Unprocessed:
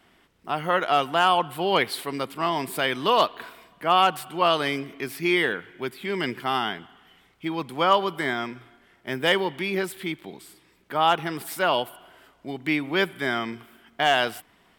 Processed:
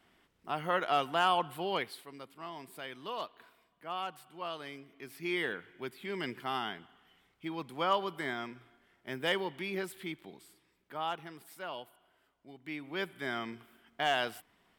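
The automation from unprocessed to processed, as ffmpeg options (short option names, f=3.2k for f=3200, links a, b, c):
-af "volume=10.5dB,afade=t=out:st=1.46:d=0.58:silence=0.281838,afade=t=in:st=4.89:d=0.64:silence=0.354813,afade=t=out:st=10.2:d=1.2:silence=0.354813,afade=t=in:st=12.61:d=0.81:silence=0.334965"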